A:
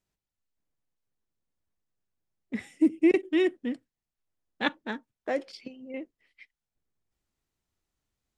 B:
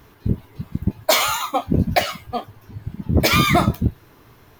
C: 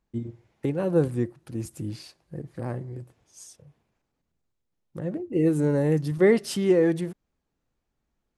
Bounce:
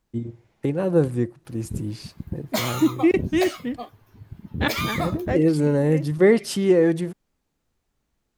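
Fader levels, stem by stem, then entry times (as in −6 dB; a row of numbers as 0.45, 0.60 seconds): +3.0, −10.0, +3.0 decibels; 0.00, 1.45, 0.00 seconds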